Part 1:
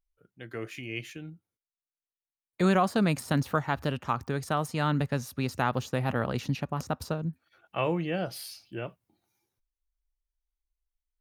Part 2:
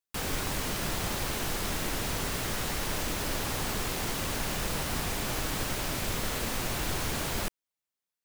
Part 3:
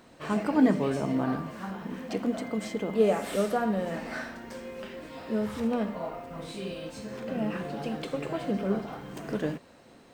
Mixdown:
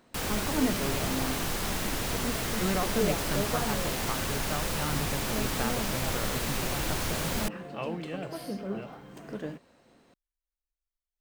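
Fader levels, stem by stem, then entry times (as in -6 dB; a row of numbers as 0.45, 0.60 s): -7.5, +0.5, -6.5 dB; 0.00, 0.00, 0.00 s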